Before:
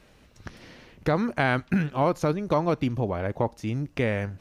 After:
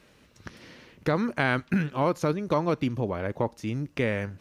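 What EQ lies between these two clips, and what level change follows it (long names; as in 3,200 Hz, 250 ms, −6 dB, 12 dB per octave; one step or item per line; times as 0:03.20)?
high-pass filter 110 Hz 6 dB per octave
parametric band 730 Hz −5 dB 0.44 octaves
0.0 dB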